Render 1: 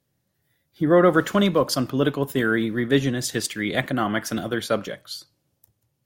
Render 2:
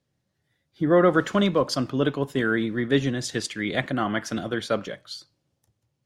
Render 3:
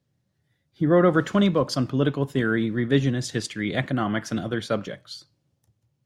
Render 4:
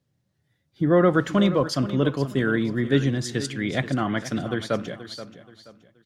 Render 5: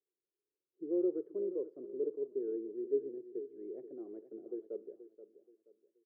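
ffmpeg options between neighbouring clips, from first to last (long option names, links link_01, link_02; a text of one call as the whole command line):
ffmpeg -i in.wav -af "lowpass=7200,volume=-2dB" out.wav
ffmpeg -i in.wav -af "equalizer=frequency=120:width=0.67:gain=6.5,volume=-1.5dB" out.wav
ffmpeg -i in.wav -af "aecho=1:1:478|956|1434:0.211|0.0676|0.0216" out.wav
ffmpeg -i in.wav -af "asuperpass=centerf=400:order=4:qfactor=4,volume=-7dB" out.wav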